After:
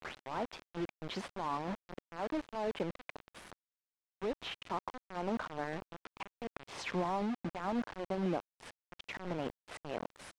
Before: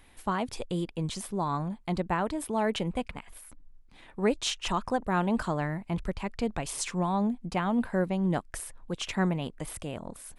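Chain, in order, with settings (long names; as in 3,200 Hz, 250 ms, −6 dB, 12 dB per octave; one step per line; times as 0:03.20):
turntable start at the beginning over 0.40 s
treble cut that deepens with the level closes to 940 Hz, closed at −22.5 dBFS
high-pass filter 290 Hz 12 dB per octave
low-shelf EQ 380 Hz −2.5 dB
downward compressor 6 to 1, threshold −41 dBFS, peak gain reduction 15.5 dB
volume swells 143 ms
bit-depth reduction 8 bits, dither none
head-to-tape spacing loss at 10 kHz 24 dB
level +10.5 dB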